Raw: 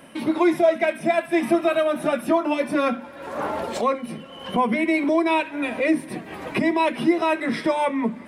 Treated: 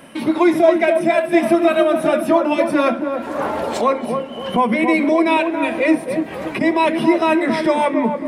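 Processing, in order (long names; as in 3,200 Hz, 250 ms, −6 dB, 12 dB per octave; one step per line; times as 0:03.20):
0:05.95–0:06.61: downward compressor, threshold −27 dBFS, peak gain reduction 8.5 dB
feedback echo with a band-pass in the loop 277 ms, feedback 47%, band-pass 480 Hz, level −4.5 dB
level +4.5 dB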